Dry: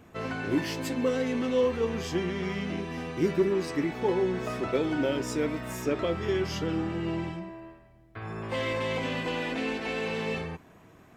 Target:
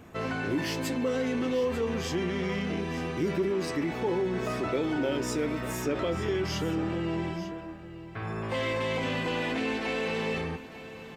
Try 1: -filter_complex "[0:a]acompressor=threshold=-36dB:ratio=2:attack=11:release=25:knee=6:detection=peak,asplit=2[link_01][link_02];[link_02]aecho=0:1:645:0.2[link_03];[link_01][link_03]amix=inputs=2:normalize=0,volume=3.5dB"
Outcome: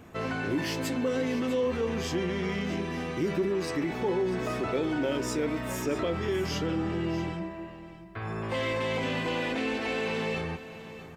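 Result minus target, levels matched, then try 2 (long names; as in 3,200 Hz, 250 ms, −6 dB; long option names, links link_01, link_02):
echo 249 ms early
-filter_complex "[0:a]acompressor=threshold=-36dB:ratio=2:attack=11:release=25:knee=6:detection=peak,asplit=2[link_01][link_02];[link_02]aecho=0:1:894:0.2[link_03];[link_01][link_03]amix=inputs=2:normalize=0,volume=3.5dB"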